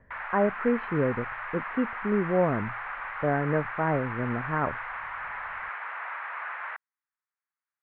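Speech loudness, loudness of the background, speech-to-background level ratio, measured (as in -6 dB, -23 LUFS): -29.0 LUFS, -35.5 LUFS, 6.5 dB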